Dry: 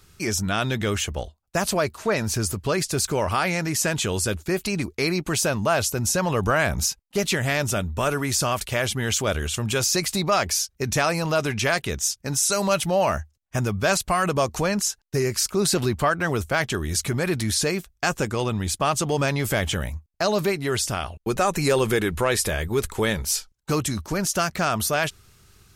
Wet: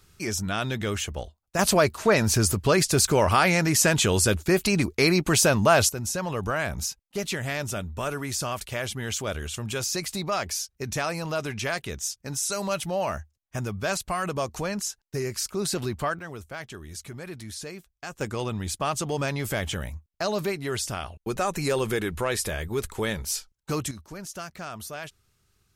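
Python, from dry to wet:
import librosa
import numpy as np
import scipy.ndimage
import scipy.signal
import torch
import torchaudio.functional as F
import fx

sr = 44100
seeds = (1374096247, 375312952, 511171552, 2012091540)

y = fx.gain(x, sr, db=fx.steps((0.0, -4.0), (1.59, 3.0), (5.89, -6.5), (16.19, -14.5), (18.21, -5.0), (23.91, -14.0)))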